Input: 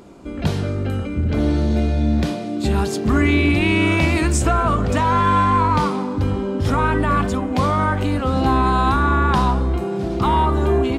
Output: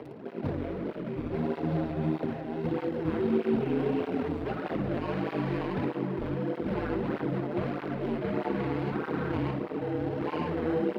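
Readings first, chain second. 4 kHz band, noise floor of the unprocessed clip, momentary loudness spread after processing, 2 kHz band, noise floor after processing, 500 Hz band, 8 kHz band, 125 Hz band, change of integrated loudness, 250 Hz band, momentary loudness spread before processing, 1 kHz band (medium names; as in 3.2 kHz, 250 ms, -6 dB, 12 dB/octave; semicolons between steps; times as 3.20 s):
-18.5 dB, -27 dBFS, 6 LU, -16.5 dB, -41 dBFS, -7.5 dB, under -30 dB, -15.0 dB, -12.5 dB, -10.0 dB, 7 LU, -19.0 dB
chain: median filter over 41 samples; in parallel at -11 dB: sample-and-hold 38×; on the sum: distance through air 420 m; frequency shift +18 Hz; treble shelf 5 kHz +8.5 dB; upward compressor, threshold -27 dBFS; high-pass 260 Hz 12 dB/octave; peak limiter -15.5 dBFS, peak gain reduction 5.5 dB; on a send: flutter echo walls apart 9.5 m, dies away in 0.32 s; on the sum: ring modulator 79 Hz; cancelling through-zero flanger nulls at 1.6 Hz, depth 5.9 ms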